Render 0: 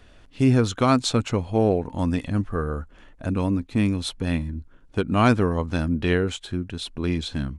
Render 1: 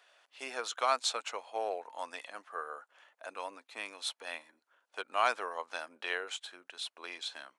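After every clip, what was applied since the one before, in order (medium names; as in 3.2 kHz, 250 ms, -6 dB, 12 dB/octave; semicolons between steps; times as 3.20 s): high-pass 630 Hz 24 dB/octave; trim -6 dB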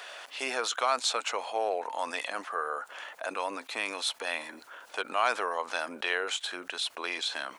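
level flattener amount 50%; trim +1 dB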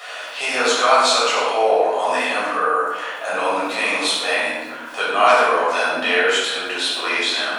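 reverberation RT60 1.2 s, pre-delay 9 ms, DRR -9.5 dB; trim +1.5 dB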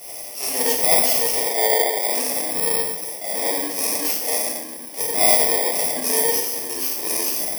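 bit-reversed sample order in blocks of 32 samples; trim -2 dB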